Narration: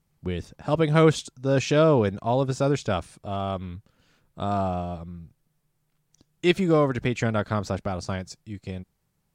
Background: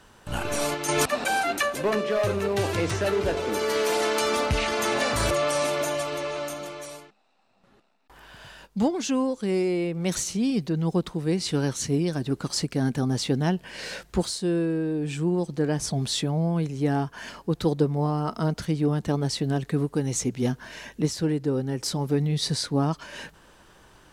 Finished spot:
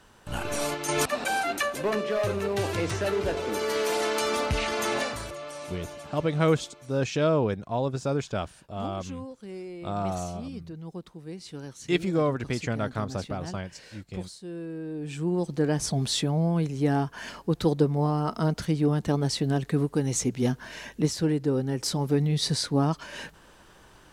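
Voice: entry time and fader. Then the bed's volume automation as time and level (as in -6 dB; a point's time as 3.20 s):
5.45 s, -4.5 dB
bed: 4.99 s -2.5 dB
5.28 s -14.5 dB
14.41 s -14.5 dB
15.49 s 0 dB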